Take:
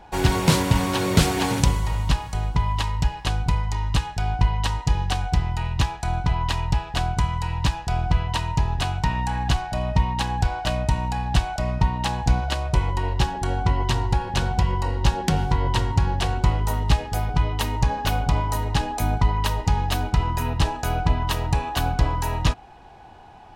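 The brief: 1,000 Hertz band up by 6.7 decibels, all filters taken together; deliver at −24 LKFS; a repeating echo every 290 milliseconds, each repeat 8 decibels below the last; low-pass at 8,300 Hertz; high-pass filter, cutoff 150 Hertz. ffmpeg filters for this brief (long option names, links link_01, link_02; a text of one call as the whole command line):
ffmpeg -i in.wav -af "highpass=150,lowpass=8300,equalizer=frequency=1000:width_type=o:gain=8,aecho=1:1:290|580|870|1160|1450:0.398|0.159|0.0637|0.0255|0.0102,volume=-1.5dB" out.wav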